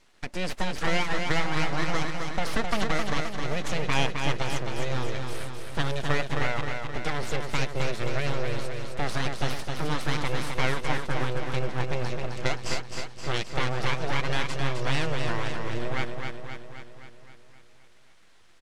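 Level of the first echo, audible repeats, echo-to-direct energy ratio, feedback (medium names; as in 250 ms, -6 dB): -5.0 dB, 7, -3.0 dB, 59%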